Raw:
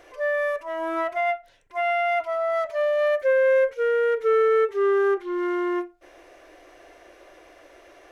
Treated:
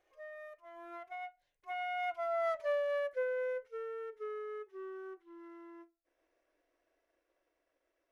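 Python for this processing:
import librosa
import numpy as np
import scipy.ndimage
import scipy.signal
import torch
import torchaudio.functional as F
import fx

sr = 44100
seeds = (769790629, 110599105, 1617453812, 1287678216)

y = fx.doppler_pass(x, sr, speed_mps=15, closest_m=5.5, pass_at_s=2.51)
y = fx.transient(y, sr, attack_db=3, sustain_db=-4)
y = y * 10.0 ** (-9.0 / 20.0)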